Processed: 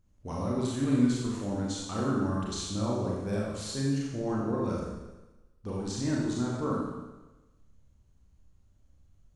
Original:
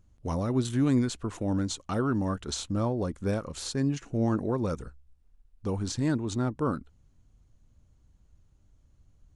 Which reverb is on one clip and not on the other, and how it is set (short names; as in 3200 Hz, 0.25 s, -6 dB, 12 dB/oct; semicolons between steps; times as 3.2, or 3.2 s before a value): Schroeder reverb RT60 1.1 s, combs from 29 ms, DRR -4.5 dB; gain -7 dB